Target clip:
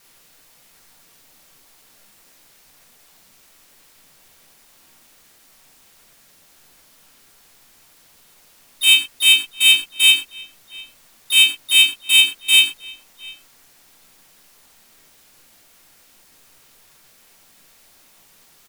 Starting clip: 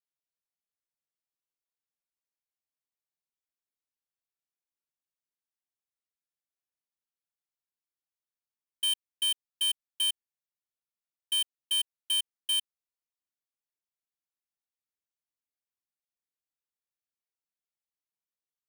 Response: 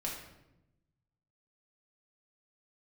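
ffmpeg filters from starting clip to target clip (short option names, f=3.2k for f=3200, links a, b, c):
-filter_complex "[0:a]aeval=exprs='val(0)+0.5*0.002*sgn(val(0))':c=same,asplit=2[a][b];[b]adelay=699.7,volume=-18dB,highshelf=f=4k:g=-15.7[c];[a][c]amix=inputs=2:normalize=0[d];[1:a]atrim=start_sample=2205,atrim=end_sample=6174[e];[d][e]afir=irnorm=-1:irlink=0,asplit=4[f][g][h][i];[g]asetrate=33038,aresample=44100,atempo=1.33484,volume=-12dB[j];[h]asetrate=37084,aresample=44100,atempo=1.18921,volume=-3dB[k];[i]asetrate=52444,aresample=44100,atempo=0.840896,volume=-4dB[l];[f][j][k][l]amix=inputs=4:normalize=0,asplit=2[m][n];[n]acrusher=bits=2:mode=log:mix=0:aa=0.000001,volume=-10dB[o];[m][o]amix=inputs=2:normalize=0,volume=6dB"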